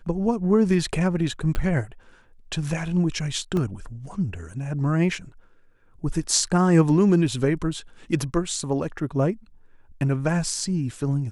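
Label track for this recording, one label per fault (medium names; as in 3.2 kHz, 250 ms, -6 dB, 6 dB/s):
1.550000	1.550000	pop -14 dBFS
3.570000	3.570000	dropout 2.1 ms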